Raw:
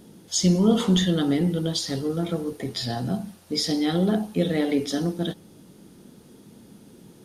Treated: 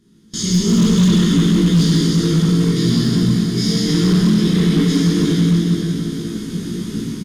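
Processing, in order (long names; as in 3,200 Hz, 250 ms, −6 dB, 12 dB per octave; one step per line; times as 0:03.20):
compressor on every frequency bin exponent 0.6
double-tracking delay 18 ms −2.5 dB
dense smooth reverb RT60 4.5 s, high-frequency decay 0.95×, DRR −9 dB
noise gate with hold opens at −14 dBFS
low-shelf EQ 180 Hz +9.5 dB
hard clipping −1.5 dBFS, distortion −12 dB
automatic gain control gain up to 3.5 dB
flat-topped bell 650 Hz −16 dB 1 octave
level −7.5 dB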